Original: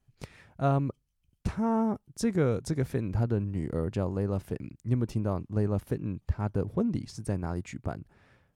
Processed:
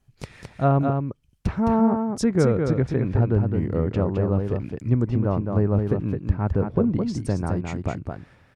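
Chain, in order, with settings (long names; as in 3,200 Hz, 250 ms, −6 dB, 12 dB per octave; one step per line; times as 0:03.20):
treble cut that deepens with the level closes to 2,100 Hz, closed at −25.5 dBFS
single-tap delay 213 ms −5 dB
level +6.5 dB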